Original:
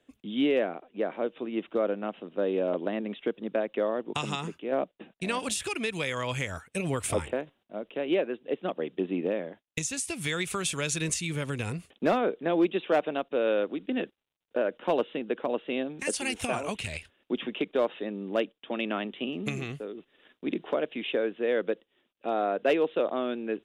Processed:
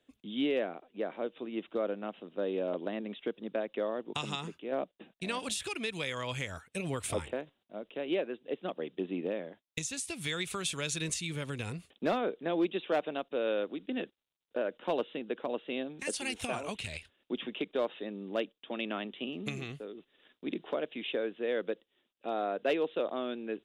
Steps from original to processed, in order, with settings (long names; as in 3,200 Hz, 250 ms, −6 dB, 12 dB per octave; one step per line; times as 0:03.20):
parametric band 3,800 Hz +5 dB 0.59 octaves
level −5.5 dB